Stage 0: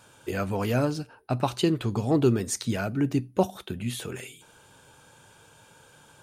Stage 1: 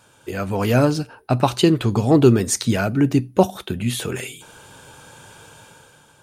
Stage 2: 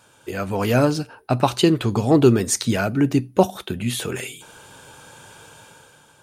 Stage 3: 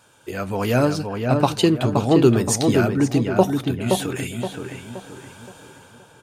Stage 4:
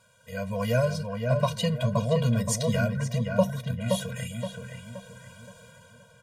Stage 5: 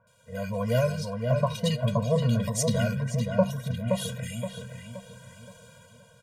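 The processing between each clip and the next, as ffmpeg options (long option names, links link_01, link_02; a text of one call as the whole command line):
ffmpeg -i in.wav -af "dynaudnorm=framelen=110:gausssize=11:maxgain=9.5dB,volume=1dB" out.wav
ffmpeg -i in.wav -af "lowshelf=frequency=190:gain=-3.5" out.wav
ffmpeg -i in.wav -filter_complex "[0:a]asplit=2[link_01][link_02];[link_02]adelay=522,lowpass=frequency=2100:poles=1,volume=-4dB,asplit=2[link_03][link_04];[link_04]adelay=522,lowpass=frequency=2100:poles=1,volume=0.41,asplit=2[link_05][link_06];[link_06]adelay=522,lowpass=frequency=2100:poles=1,volume=0.41,asplit=2[link_07][link_08];[link_08]adelay=522,lowpass=frequency=2100:poles=1,volume=0.41,asplit=2[link_09][link_10];[link_10]adelay=522,lowpass=frequency=2100:poles=1,volume=0.41[link_11];[link_01][link_03][link_05][link_07][link_09][link_11]amix=inputs=6:normalize=0,volume=-1dB" out.wav
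ffmpeg -i in.wav -af "afftfilt=real='re*eq(mod(floor(b*sr/1024/230),2),0)':imag='im*eq(mod(floor(b*sr/1024/230),2),0)':win_size=1024:overlap=0.75,volume=-3.5dB" out.wav
ffmpeg -i in.wav -filter_complex "[0:a]acrossover=split=1600[link_01][link_02];[link_02]adelay=70[link_03];[link_01][link_03]amix=inputs=2:normalize=0" out.wav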